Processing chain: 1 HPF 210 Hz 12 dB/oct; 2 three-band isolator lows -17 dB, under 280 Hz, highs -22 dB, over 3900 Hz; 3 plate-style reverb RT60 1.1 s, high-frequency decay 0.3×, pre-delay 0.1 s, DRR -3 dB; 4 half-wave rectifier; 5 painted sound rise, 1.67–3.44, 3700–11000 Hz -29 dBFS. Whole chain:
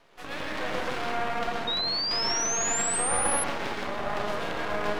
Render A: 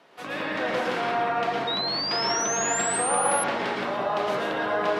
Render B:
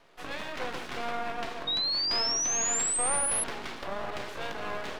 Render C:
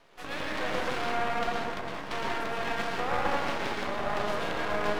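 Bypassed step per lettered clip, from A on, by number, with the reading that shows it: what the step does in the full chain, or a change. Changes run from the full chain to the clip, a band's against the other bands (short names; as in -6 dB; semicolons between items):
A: 4, crest factor change -2.0 dB; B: 3, momentary loudness spread change +4 LU; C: 5, 8 kHz band -22.0 dB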